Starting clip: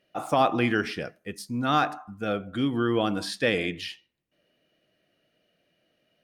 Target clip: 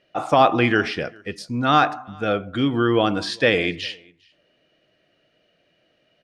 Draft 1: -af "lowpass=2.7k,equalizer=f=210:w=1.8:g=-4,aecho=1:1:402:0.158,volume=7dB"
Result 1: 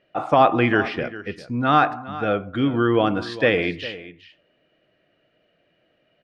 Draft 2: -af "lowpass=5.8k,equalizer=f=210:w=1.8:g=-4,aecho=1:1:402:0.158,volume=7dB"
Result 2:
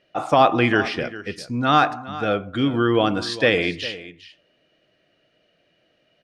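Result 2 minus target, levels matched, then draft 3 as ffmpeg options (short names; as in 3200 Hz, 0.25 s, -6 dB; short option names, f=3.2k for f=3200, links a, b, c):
echo-to-direct +12 dB
-af "lowpass=5.8k,equalizer=f=210:w=1.8:g=-4,aecho=1:1:402:0.0398,volume=7dB"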